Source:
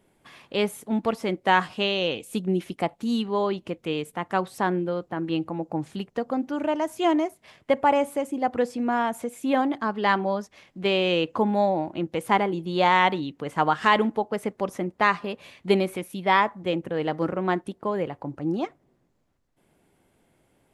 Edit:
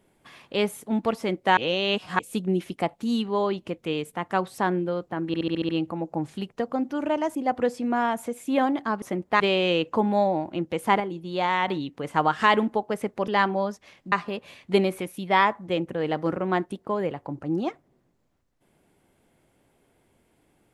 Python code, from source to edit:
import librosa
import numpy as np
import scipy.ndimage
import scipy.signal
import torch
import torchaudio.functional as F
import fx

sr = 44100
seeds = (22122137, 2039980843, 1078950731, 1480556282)

y = fx.edit(x, sr, fx.reverse_span(start_s=1.57, length_s=0.62),
    fx.stutter(start_s=5.27, slice_s=0.07, count=7),
    fx.cut(start_s=6.93, length_s=1.38),
    fx.swap(start_s=9.98, length_s=0.84, other_s=14.7, other_length_s=0.38),
    fx.clip_gain(start_s=12.42, length_s=0.68, db=-5.0), tone=tone)